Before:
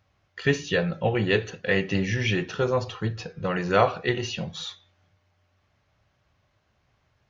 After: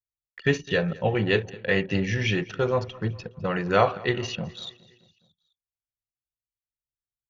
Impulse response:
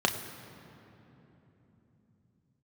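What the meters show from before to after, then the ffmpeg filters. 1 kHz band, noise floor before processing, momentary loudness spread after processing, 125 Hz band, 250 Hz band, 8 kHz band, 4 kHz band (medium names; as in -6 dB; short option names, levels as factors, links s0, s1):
0.0 dB, -70 dBFS, 10 LU, 0.0 dB, 0.0 dB, no reading, -1.0 dB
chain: -af "anlmdn=6.31,agate=range=0.0794:threshold=0.00447:ratio=16:detection=peak,aecho=1:1:208|416|624|832:0.0794|0.0469|0.0277|0.0163"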